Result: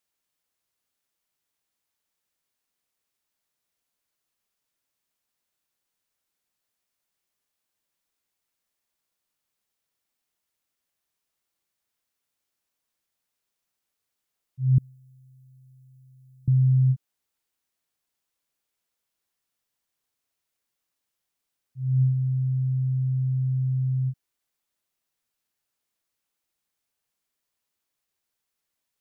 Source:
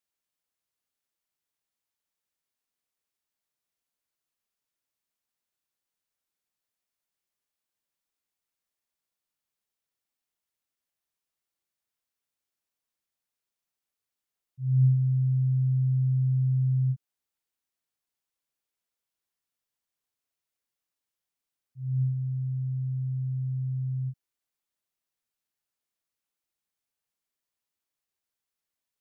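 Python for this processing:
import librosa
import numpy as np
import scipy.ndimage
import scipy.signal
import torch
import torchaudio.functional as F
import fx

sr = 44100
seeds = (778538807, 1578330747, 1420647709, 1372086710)

y = fx.differentiator(x, sr, at=(14.78, 16.48))
y = y * librosa.db_to_amplitude(5.5)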